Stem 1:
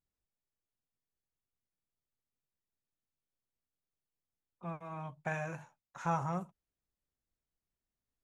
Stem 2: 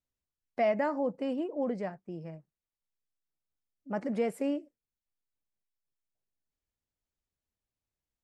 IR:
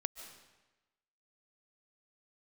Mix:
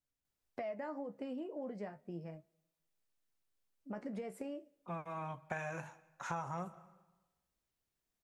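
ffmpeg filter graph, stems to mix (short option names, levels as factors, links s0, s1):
-filter_complex "[0:a]lowshelf=f=200:g=-7,adelay=250,volume=1.26,asplit=2[s0][s1];[s1]volume=0.224[s2];[1:a]acompressor=threshold=0.0158:ratio=6,flanger=delay=6.9:depth=8.9:regen=56:speed=0.34:shape=sinusoidal,volume=1.12,asplit=2[s3][s4];[s4]volume=0.0794[s5];[2:a]atrim=start_sample=2205[s6];[s2][s5]amix=inputs=2:normalize=0[s7];[s7][s6]afir=irnorm=-1:irlink=0[s8];[s0][s3][s8]amix=inputs=3:normalize=0,acompressor=threshold=0.0141:ratio=6"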